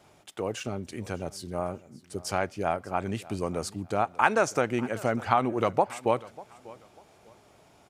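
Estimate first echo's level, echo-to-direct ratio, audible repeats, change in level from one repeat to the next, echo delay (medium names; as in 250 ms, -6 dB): -20.5 dB, -20.0 dB, 2, -11.5 dB, 594 ms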